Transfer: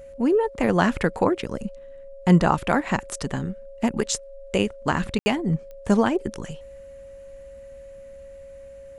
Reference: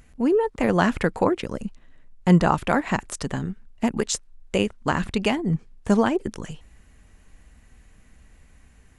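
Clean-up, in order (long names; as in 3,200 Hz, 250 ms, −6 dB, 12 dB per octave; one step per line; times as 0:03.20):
click removal
notch filter 550 Hz, Q 30
ambience match 0:05.19–0:05.26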